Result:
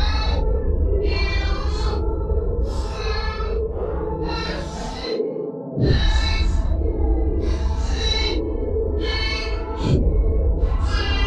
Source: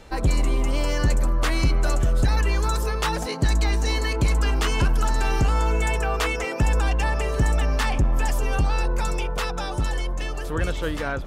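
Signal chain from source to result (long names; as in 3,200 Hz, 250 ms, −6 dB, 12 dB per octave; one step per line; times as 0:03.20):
auto-filter low-pass square 3.2 Hz 470–4,100 Hz
extreme stretch with random phases 5.1×, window 0.05 s, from 0:02.28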